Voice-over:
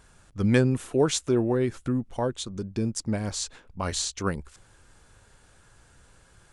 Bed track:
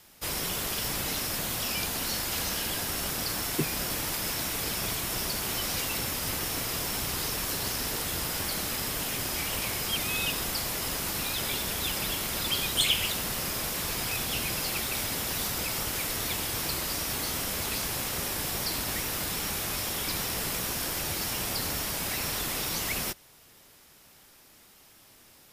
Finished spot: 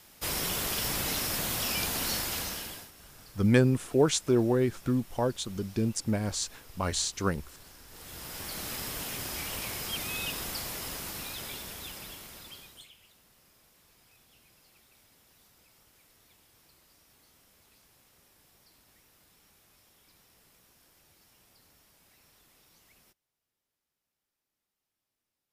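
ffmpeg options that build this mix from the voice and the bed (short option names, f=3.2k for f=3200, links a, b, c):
-filter_complex "[0:a]adelay=3000,volume=-1dB[a];[1:a]volume=17.5dB,afade=t=out:st=2.13:d=0.78:silence=0.0749894,afade=t=in:st=7.88:d=0.84:silence=0.133352,afade=t=out:st=10.58:d=2.32:silence=0.0473151[b];[a][b]amix=inputs=2:normalize=0"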